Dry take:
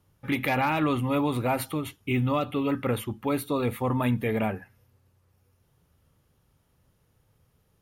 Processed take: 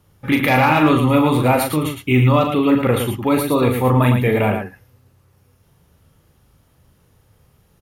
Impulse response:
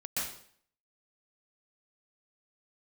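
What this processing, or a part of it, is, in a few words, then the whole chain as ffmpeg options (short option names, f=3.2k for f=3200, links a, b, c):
slapback doubling: -filter_complex "[0:a]asplit=3[a][b][c];[b]adelay=39,volume=-6dB[d];[c]adelay=111,volume=-6dB[e];[a][d][e]amix=inputs=3:normalize=0,volume=9dB"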